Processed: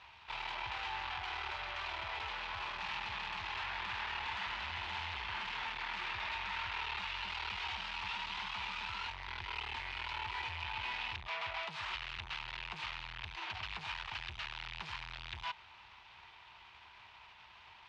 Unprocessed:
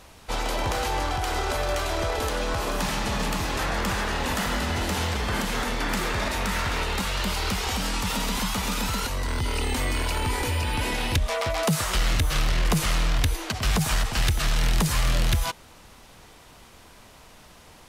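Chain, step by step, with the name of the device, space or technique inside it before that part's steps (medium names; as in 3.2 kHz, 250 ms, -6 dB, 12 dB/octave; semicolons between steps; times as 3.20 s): scooped metal amplifier (valve stage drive 35 dB, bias 0.7; cabinet simulation 94–3500 Hz, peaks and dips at 150 Hz -6 dB, 350 Hz +10 dB, 520 Hz -8 dB, 920 Hz +10 dB, 2.5 kHz +4 dB; amplifier tone stack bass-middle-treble 10-0-10); trim +3.5 dB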